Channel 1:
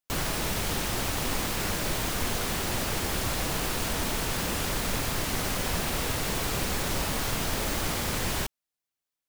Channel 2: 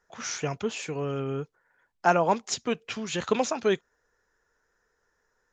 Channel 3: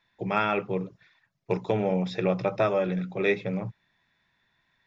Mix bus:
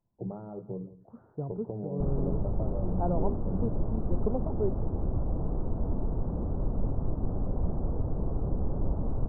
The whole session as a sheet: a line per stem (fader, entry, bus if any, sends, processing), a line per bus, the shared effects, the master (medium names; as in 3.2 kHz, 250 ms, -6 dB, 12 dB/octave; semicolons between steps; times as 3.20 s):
-1.5 dB, 1.90 s, no send, no echo send, none
-4.5 dB, 0.95 s, no send, no echo send, none
-2.5 dB, 0.00 s, no send, echo send -17.5 dB, compression 6:1, threshold -30 dBFS, peak gain reduction 11 dB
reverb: none
echo: delay 171 ms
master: Gaussian low-pass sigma 12 samples; bass shelf 110 Hz +8 dB